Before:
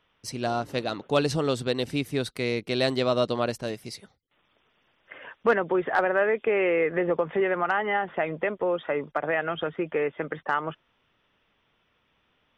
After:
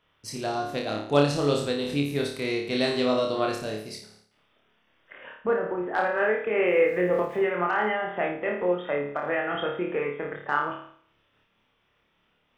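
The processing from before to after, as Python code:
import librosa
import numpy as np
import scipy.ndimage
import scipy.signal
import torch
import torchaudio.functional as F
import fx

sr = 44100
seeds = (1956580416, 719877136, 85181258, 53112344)

y = fx.spacing_loss(x, sr, db_at_10k=44, at=(5.33, 5.93), fade=0.02)
y = fx.sample_gate(y, sr, floor_db=-48.5, at=(6.67, 7.38))
y = fx.room_flutter(y, sr, wall_m=4.8, rt60_s=0.59)
y = fx.am_noise(y, sr, seeds[0], hz=5.7, depth_pct=50)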